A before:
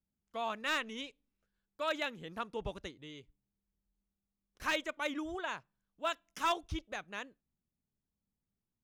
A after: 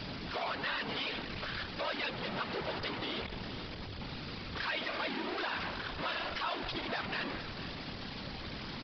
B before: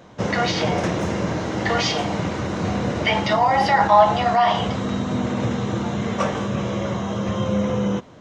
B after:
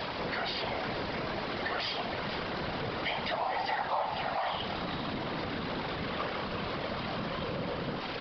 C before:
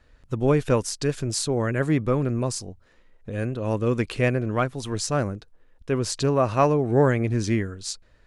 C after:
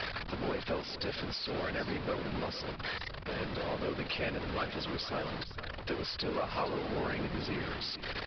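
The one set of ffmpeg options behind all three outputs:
-af "aeval=exprs='val(0)+0.5*0.119*sgn(val(0))':c=same,lowshelf=f=410:g=-11,afftfilt=real='hypot(re,im)*cos(2*PI*random(0))':imag='hypot(re,im)*sin(2*PI*random(1))':win_size=512:overlap=0.75,acompressor=threshold=-32dB:ratio=2.5,aresample=11025,aresample=44100,aecho=1:1:463|926:0.224|0.047,acontrast=60,volume=-7.5dB"

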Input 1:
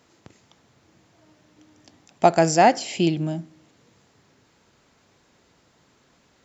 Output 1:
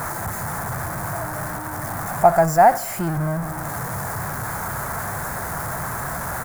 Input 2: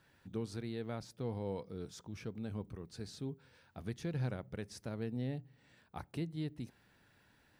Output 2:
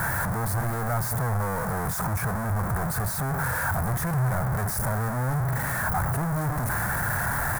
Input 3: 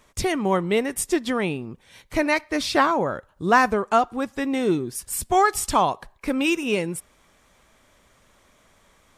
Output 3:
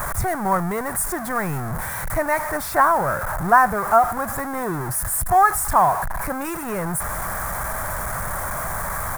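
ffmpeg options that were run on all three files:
-af "aeval=exprs='val(0)+0.5*0.106*sgn(val(0))':c=same,firequalizer=gain_entry='entry(140,0);entry(260,-13);entry(470,-10);entry(680,1);entry(1600,1);entry(2800,-24);entry(10000,0)':delay=0.05:min_phase=1,volume=1dB"

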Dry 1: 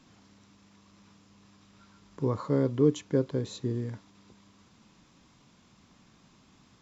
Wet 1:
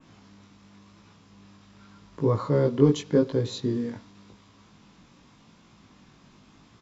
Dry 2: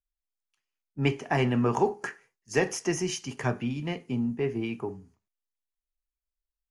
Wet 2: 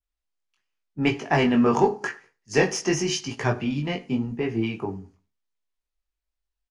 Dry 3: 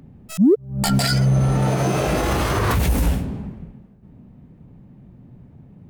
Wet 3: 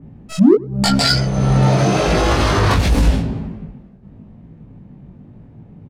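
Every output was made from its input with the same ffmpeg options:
-filter_complex "[0:a]adynamicequalizer=threshold=0.00355:dfrequency=4600:dqfactor=1.3:tfrequency=4600:tqfactor=1.3:attack=5:release=100:ratio=0.375:range=3:mode=boostabove:tftype=bell,asplit=2[a][b];[b]volume=17.5dB,asoftclip=hard,volume=-17.5dB,volume=-9dB[c];[a][c]amix=inputs=2:normalize=0,flanger=delay=18:depth=3.2:speed=0.89,adynamicsmooth=sensitivity=0.5:basefreq=7.8k,asplit=2[d][e];[e]adelay=98,lowpass=f=1.8k:p=1,volume=-21.5dB,asplit=2[f][g];[g]adelay=98,lowpass=f=1.8k:p=1,volume=0.33[h];[d][f][h]amix=inputs=3:normalize=0,volume=5.5dB"

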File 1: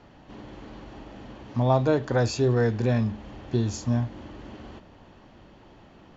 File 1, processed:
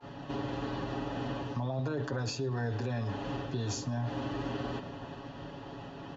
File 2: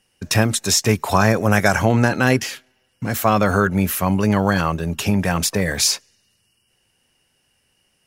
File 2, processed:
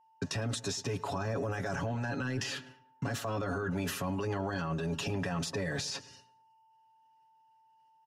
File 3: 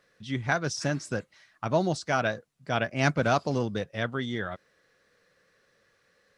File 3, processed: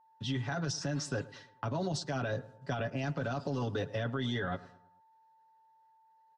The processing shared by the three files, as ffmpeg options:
-filter_complex "[0:a]lowpass=6.2k,bandreject=f=2.2k:w=6,agate=range=-33dB:threshold=-49dB:ratio=3:detection=peak,highpass=51,aecho=1:1:7.2:0.87,areverse,acompressor=threshold=-25dB:ratio=6,areverse,alimiter=level_in=3dB:limit=-24dB:level=0:latency=1:release=20,volume=-3dB,acrossover=split=110|420[a][b][c];[a]acompressor=threshold=-52dB:ratio=4[d];[b]acompressor=threshold=-43dB:ratio=4[e];[c]acompressor=threshold=-44dB:ratio=4[f];[d][e][f]amix=inputs=3:normalize=0,aeval=exprs='val(0)+0.000316*sin(2*PI*890*n/s)':c=same,asplit=2[g][h];[h]adelay=108,lowpass=f=2k:p=1,volume=-18dB,asplit=2[i][j];[j]adelay=108,lowpass=f=2k:p=1,volume=0.46,asplit=2[k][l];[l]adelay=108,lowpass=f=2k:p=1,volume=0.46,asplit=2[m][n];[n]adelay=108,lowpass=f=2k:p=1,volume=0.46[o];[g][i][k][m][o]amix=inputs=5:normalize=0,volume=7dB"

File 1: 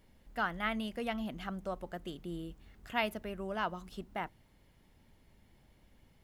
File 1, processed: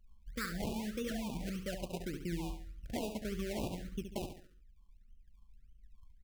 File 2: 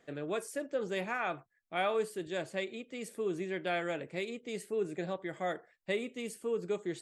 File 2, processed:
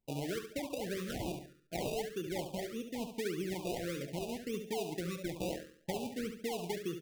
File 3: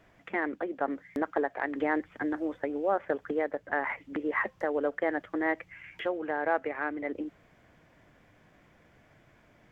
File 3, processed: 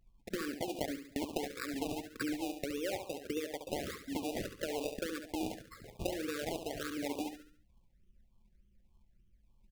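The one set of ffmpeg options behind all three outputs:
-af "anlmdn=0.0251,lowpass=f=2.4k:w=0.5412,lowpass=f=2.4k:w=1.3066,lowshelf=f=210:g=9,acompressor=threshold=-35dB:ratio=10,acrusher=samples=28:mix=1:aa=0.000001:lfo=1:lforange=28:lforate=1.7,aecho=1:1:70|140|210|280|350:0.398|0.167|0.0702|0.0295|0.0124,afftfilt=real='re*(1-between(b*sr/1024,750*pow(1700/750,0.5+0.5*sin(2*PI*1.7*pts/sr))/1.41,750*pow(1700/750,0.5+0.5*sin(2*PI*1.7*pts/sr))*1.41))':imag='im*(1-between(b*sr/1024,750*pow(1700/750,0.5+0.5*sin(2*PI*1.7*pts/sr))/1.41,750*pow(1700/750,0.5+0.5*sin(2*PI*1.7*pts/sr))*1.41))':win_size=1024:overlap=0.75,volume=1dB"

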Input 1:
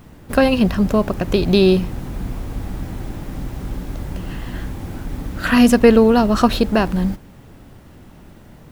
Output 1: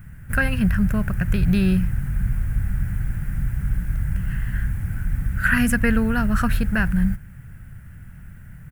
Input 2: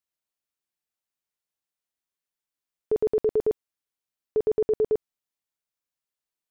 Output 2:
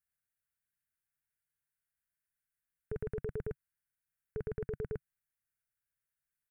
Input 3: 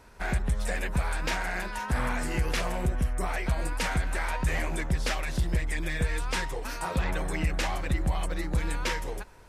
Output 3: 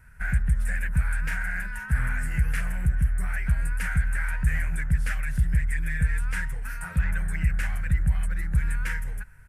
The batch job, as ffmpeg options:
-af "firequalizer=gain_entry='entry(140,0);entry(300,-23);entry(1100,-17);entry(1500,0);entry(3700,-22);entry(6500,-15);entry(9200,-5)':delay=0.05:min_phase=1,volume=5dB"

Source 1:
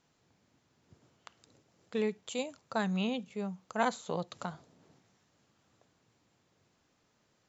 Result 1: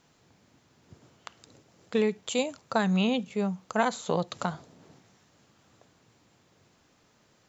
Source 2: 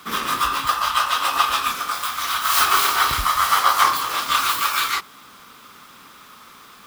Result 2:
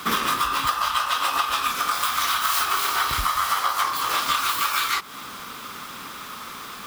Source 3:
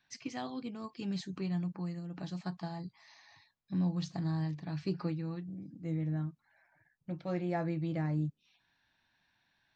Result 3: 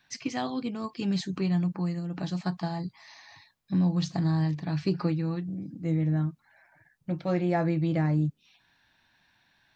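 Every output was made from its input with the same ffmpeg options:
-af "acompressor=threshold=-28dB:ratio=12,volume=8.5dB"

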